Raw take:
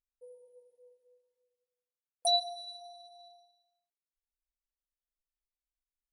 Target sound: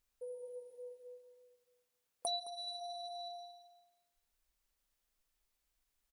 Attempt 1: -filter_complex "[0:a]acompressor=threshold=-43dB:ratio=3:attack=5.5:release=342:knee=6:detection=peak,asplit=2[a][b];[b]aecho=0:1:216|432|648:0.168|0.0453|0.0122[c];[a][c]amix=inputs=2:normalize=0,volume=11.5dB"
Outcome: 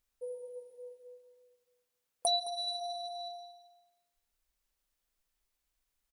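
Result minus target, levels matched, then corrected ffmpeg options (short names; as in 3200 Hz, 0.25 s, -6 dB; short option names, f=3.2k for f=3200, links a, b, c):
compressor: peak gain reduction -8 dB
-filter_complex "[0:a]acompressor=threshold=-55dB:ratio=3:attack=5.5:release=342:knee=6:detection=peak,asplit=2[a][b];[b]aecho=0:1:216|432|648:0.168|0.0453|0.0122[c];[a][c]amix=inputs=2:normalize=0,volume=11.5dB"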